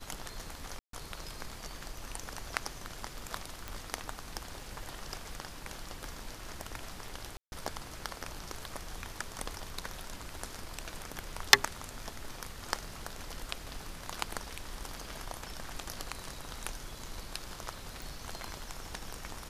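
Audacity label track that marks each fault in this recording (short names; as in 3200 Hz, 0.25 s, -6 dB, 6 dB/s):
0.790000	0.930000	gap 0.143 s
3.680000	3.680000	pop -22 dBFS
7.370000	7.520000	gap 0.151 s
18.020000	18.020000	pop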